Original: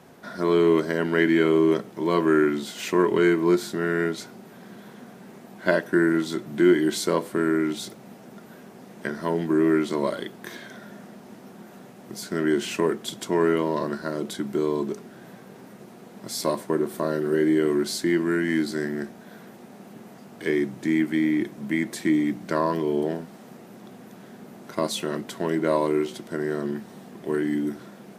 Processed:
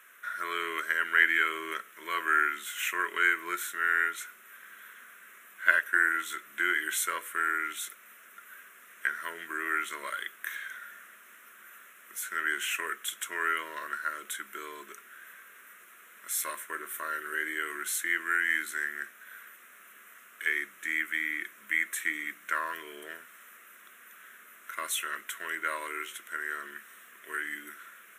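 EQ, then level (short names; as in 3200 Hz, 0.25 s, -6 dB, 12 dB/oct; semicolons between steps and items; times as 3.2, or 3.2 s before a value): resonant high-pass 1300 Hz, resonance Q 2; high shelf 6500 Hz +9 dB; fixed phaser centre 2000 Hz, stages 4; 0.0 dB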